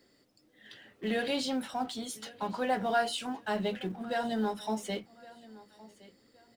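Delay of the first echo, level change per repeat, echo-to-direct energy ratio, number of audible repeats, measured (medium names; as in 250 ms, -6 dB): 1117 ms, -10.5 dB, -20.0 dB, 2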